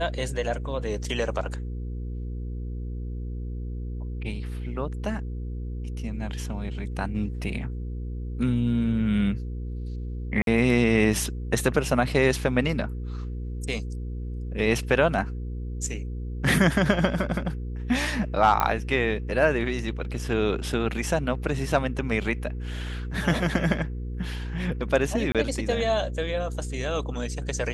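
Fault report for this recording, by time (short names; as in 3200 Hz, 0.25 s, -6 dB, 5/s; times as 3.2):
hum 60 Hz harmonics 8 -32 dBFS
1.04 gap 4.4 ms
10.42–10.47 gap 52 ms
18.6 pop -9 dBFS
25.32–25.35 gap 27 ms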